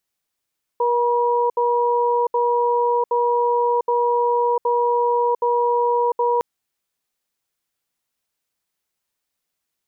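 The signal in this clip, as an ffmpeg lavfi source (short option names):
-f lavfi -i "aevalsrc='0.119*(sin(2*PI*478*t)+sin(2*PI*962*t))*clip(min(mod(t,0.77),0.7-mod(t,0.77))/0.005,0,1)':d=5.61:s=44100"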